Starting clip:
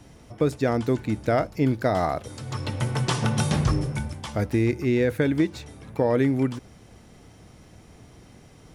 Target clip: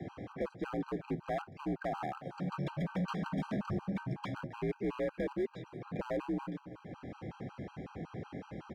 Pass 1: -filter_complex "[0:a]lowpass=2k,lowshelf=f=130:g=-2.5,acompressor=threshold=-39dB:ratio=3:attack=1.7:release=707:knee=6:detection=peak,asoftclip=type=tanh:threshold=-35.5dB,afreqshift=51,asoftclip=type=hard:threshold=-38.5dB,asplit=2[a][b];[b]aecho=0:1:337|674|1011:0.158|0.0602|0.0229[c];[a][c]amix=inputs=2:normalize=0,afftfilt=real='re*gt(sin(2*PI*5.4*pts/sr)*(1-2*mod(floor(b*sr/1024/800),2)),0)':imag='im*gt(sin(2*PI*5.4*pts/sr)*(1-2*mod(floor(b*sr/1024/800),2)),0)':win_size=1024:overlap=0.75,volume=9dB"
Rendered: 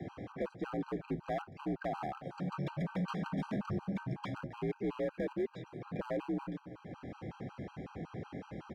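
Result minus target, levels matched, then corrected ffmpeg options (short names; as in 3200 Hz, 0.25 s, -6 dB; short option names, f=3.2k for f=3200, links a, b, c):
soft clip: distortion +12 dB
-filter_complex "[0:a]lowpass=2k,lowshelf=f=130:g=-2.5,acompressor=threshold=-39dB:ratio=3:attack=1.7:release=707:knee=6:detection=peak,asoftclip=type=tanh:threshold=-27.5dB,afreqshift=51,asoftclip=type=hard:threshold=-38.5dB,asplit=2[a][b];[b]aecho=0:1:337|674|1011:0.158|0.0602|0.0229[c];[a][c]amix=inputs=2:normalize=0,afftfilt=real='re*gt(sin(2*PI*5.4*pts/sr)*(1-2*mod(floor(b*sr/1024/800),2)),0)':imag='im*gt(sin(2*PI*5.4*pts/sr)*(1-2*mod(floor(b*sr/1024/800),2)),0)':win_size=1024:overlap=0.75,volume=9dB"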